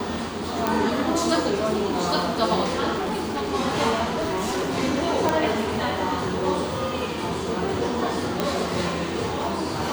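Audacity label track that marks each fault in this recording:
0.670000	0.670000	click
2.970000	3.500000	clipping −23.5 dBFS
4.050000	4.780000	clipping −22 dBFS
5.290000	5.290000	click −6 dBFS
8.400000	8.400000	click −8 dBFS

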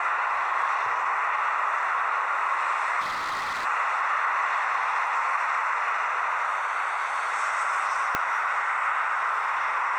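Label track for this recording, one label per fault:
3.000000	3.660000	clipping −26.5 dBFS
8.150000	8.150000	click −9 dBFS

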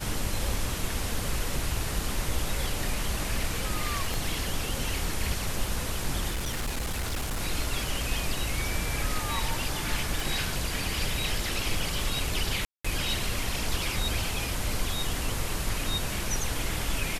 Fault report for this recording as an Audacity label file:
4.140000	4.140000	click
6.300000	7.410000	clipping −26.5 dBFS
10.200000	10.200000	click
12.650000	12.850000	drop-out 195 ms

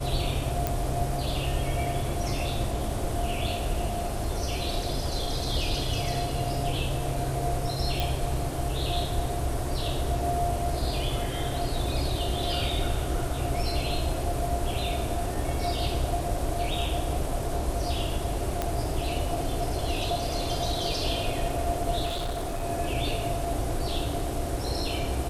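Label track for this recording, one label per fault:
0.670000	0.670000	click
8.000000	8.000000	click
18.620000	18.620000	click −13 dBFS
22.050000	22.650000	clipping −27 dBFS

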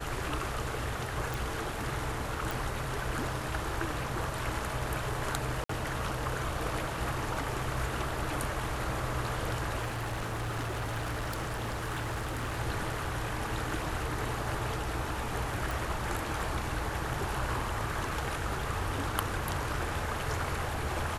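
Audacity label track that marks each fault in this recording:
1.340000	1.340000	click
2.510000	2.510000	click
5.640000	5.690000	drop-out 54 ms
9.810000	12.600000	clipping −30.5 dBFS
15.710000	15.710000	click

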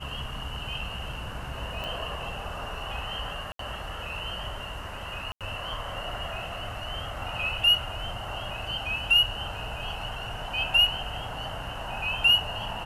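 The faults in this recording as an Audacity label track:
1.840000	1.840000	click −21 dBFS
3.520000	3.590000	drop-out 73 ms
5.320000	5.410000	drop-out 87 ms

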